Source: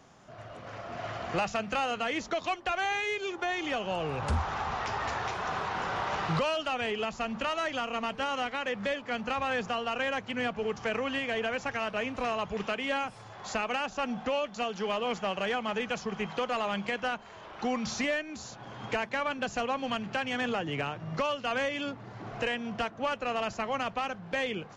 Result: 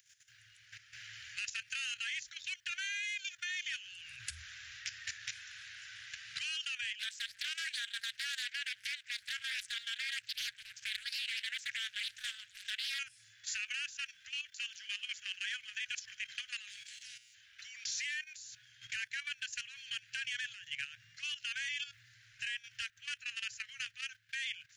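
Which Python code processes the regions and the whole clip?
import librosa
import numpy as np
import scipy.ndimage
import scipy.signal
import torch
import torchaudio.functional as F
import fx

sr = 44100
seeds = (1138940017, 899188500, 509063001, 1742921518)

y = fx.chain(x, sr, fx.highpass(hz=160.0, slope=12),
    fx.doppler_dist(depth_ms=0.92), at=(6.99, 12.99))
y = fx.spec_clip(y, sr, under_db=29, at=(16.67, 17.33), fade=0.02)
y = fx.peak_eq(y, sr, hz=1000.0, db=-2.5, octaves=1.3, at=(16.67, 17.33), fade=0.02)
y = fx.comb_fb(y, sr, f0_hz=120.0, decay_s=0.83, harmonics='all', damping=0.0, mix_pct=80, at=(16.67, 17.33), fade=0.02)
y = scipy.signal.sosfilt(scipy.signal.cheby1(5, 1.0, [120.0, 1600.0], 'bandstop', fs=sr, output='sos'), y)
y = fx.riaa(y, sr, side='recording')
y = fx.level_steps(y, sr, step_db=12)
y = y * librosa.db_to_amplitude(-2.5)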